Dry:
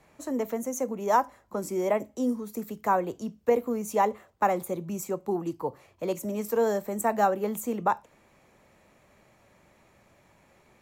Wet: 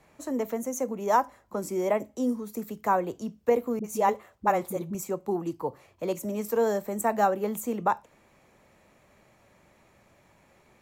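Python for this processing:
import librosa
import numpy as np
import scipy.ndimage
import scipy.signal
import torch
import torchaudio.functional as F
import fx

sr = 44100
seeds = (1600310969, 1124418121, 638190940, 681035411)

y = fx.dispersion(x, sr, late='highs', ms=50.0, hz=360.0, at=(3.79, 4.95))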